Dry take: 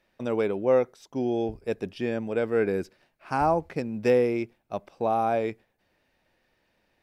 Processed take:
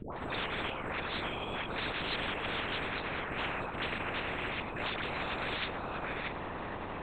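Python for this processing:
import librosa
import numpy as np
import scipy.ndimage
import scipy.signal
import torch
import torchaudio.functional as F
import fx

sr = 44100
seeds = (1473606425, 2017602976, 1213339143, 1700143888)

p1 = fx.frame_reverse(x, sr, frame_ms=74.0)
p2 = fx.high_shelf(p1, sr, hz=2100.0, db=-10.0)
p3 = fx.notch(p2, sr, hz=730.0, q=12.0)
p4 = fx.over_compress(p3, sr, threshold_db=-35.0, ratio=-1.0)
p5 = fx.granulator(p4, sr, seeds[0], grain_ms=100.0, per_s=20.0, spray_ms=10.0, spread_st=0)
p6 = fx.dmg_buzz(p5, sr, base_hz=120.0, harmonics=9, level_db=-56.0, tilt_db=-5, odd_only=False)
p7 = fx.dispersion(p6, sr, late='highs', ms=145.0, hz=650.0)
p8 = p7 + fx.echo_single(p7, sr, ms=634, db=-11.0, dry=0)
p9 = fx.lpc_vocoder(p8, sr, seeds[1], excitation='whisper', order=10)
y = fx.spectral_comp(p9, sr, ratio=10.0)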